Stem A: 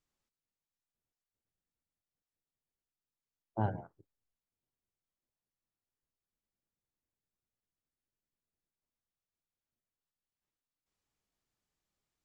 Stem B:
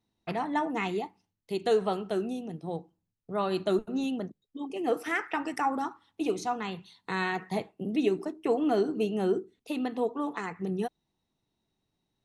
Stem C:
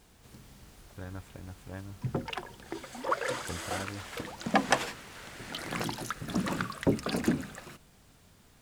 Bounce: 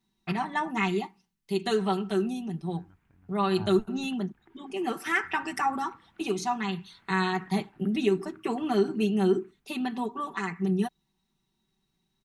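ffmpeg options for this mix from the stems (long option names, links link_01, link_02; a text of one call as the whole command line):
ffmpeg -i stem1.wav -i stem2.wav -i stem3.wav -filter_complex "[0:a]volume=-5dB[link_01];[1:a]aecho=1:1:5.2:0.77,volume=2.5dB[link_02];[2:a]lowpass=frequency=2400:width=0.5412,lowpass=frequency=2400:width=1.3066,acompressor=threshold=-36dB:ratio=6,adelay=1750,volume=-16dB[link_03];[link_01][link_02][link_03]amix=inputs=3:normalize=0,equalizer=frequency=540:width_type=o:width=0.61:gain=-13.5" out.wav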